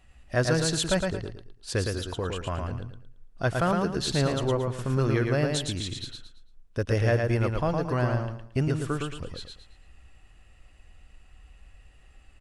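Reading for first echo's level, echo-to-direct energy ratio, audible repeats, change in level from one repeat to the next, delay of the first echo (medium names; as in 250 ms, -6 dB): -4.0 dB, -3.5 dB, 3, -10.5 dB, 112 ms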